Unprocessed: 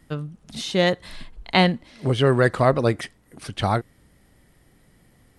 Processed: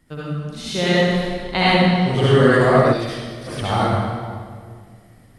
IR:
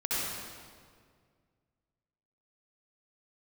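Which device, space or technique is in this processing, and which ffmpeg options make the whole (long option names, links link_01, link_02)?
stairwell: -filter_complex "[1:a]atrim=start_sample=2205[link_01];[0:a][link_01]afir=irnorm=-1:irlink=0,asplit=3[link_02][link_03][link_04];[link_02]afade=type=out:start_time=2.92:duration=0.02[link_05];[link_03]equalizer=frequency=125:width_type=o:width=1:gain=-10,equalizer=frequency=250:width_type=o:width=1:gain=-4,equalizer=frequency=500:width_type=o:width=1:gain=-9,equalizer=frequency=1000:width_type=o:width=1:gain=-8,equalizer=frequency=2000:width_type=o:width=1:gain=-5,equalizer=frequency=4000:width_type=o:width=1:gain=5,equalizer=frequency=8000:width_type=o:width=1:gain=-6,afade=type=in:start_time=2.92:duration=0.02,afade=type=out:start_time=3.46:duration=0.02[link_06];[link_04]afade=type=in:start_time=3.46:duration=0.02[link_07];[link_05][link_06][link_07]amix=inputs=3:normalize=0,volume=-3dB"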